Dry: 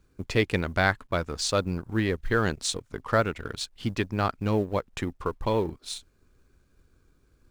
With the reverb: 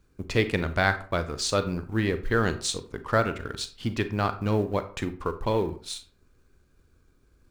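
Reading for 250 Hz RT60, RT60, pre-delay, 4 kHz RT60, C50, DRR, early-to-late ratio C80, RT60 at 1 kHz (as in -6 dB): 0.45 s, 0.40 s, 31 ms, 0.25 s, 13.5 dB, 10.0 dB, 18.0 dB, 0.40 s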